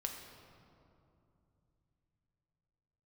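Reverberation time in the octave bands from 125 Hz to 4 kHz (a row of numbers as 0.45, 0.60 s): 4.7, 3.8, 3.0, 2.6, 1.8, 1.4 s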